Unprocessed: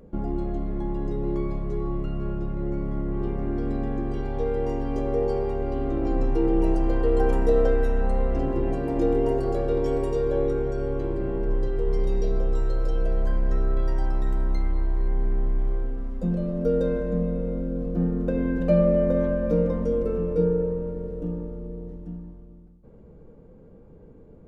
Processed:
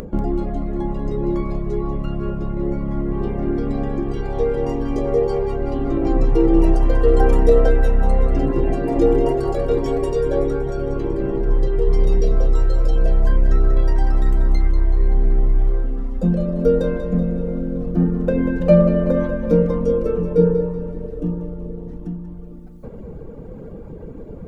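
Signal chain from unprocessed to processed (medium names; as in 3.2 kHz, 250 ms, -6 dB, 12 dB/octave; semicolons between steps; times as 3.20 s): reverb removal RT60 1.2 s; upward compressor, threshold -33 dBFS; two-band feedback delay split 400 Hz, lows 120 ms, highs 189 ms, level -10 dB; trim +8.5 dB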